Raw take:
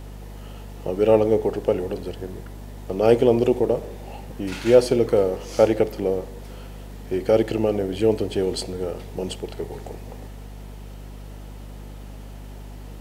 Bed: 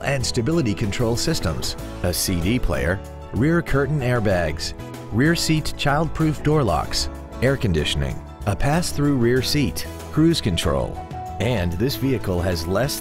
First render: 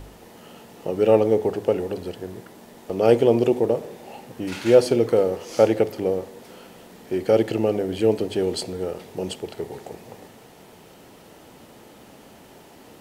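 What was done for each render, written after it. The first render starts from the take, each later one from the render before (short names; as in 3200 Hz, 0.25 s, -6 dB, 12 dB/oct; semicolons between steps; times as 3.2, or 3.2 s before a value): de-hum 50 Hz, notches 5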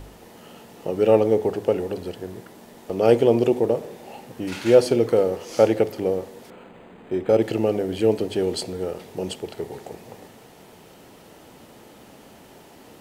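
6.5–7.42 decimation joined by straight lines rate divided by 8×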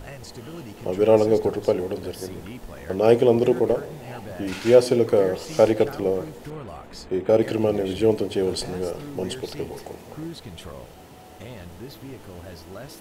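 add bed -18.5 dB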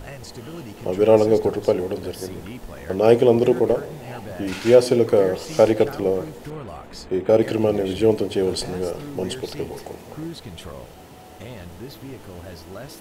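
gain +2 dB; limiter -2 dBFS, peak gain reduction 1.5 dB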